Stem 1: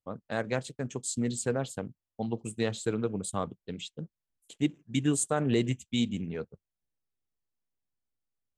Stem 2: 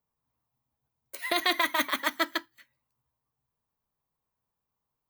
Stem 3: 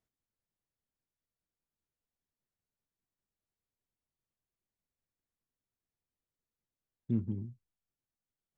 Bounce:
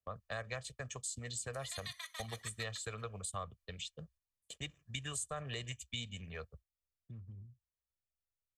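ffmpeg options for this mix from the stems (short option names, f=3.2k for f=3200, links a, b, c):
-filter_complex "[0:a]agate=range=-17dB:threshold=-54dB:ratio=16:detection=peak,volume=-0.5dB[a];[1:a]lowpass=f=9.1k:w=0.5412,lowpass=f=9.1k:w=1.3066,aderivative,adelay=400,volume=-9dB[b];[2:a]volume=-12dB[c];[a][b][c]amix=inputs=3:normalize=0,equalizer=f=61:w=1.3:g=11.5,aecho=1:1:1.7:0.58,acrossover=split=97|750[d][e][f];[d]acompressor=threshold=-50dB:ratio=4[g];[e]acompressor=threshold=-56dB:ratio=4[h];[f]acompressor=threshold=-40dB:ratio=4[i];[g][h][i]amix=inputs=3:normalize=0"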